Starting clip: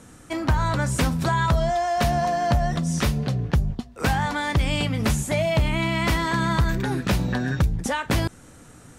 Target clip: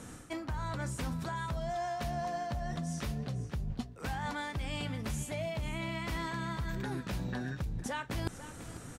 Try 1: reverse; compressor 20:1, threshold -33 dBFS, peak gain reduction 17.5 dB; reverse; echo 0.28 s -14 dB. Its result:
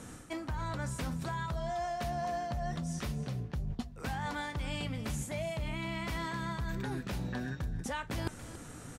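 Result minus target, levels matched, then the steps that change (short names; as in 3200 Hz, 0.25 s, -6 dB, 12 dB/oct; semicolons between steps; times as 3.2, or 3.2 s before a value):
echo 0.213 s early
change: echo 0.493 s -14 dB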